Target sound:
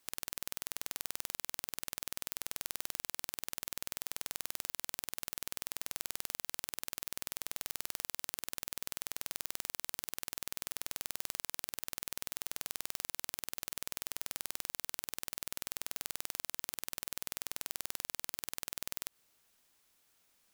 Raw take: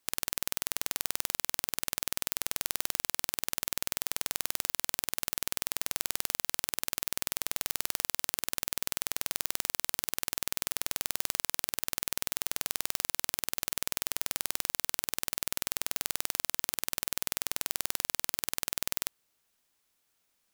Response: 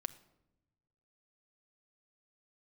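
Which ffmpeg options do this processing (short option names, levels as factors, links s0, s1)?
-af "alimiter=limit=0.224:level=0:latency=1:release=102,volume=1.5"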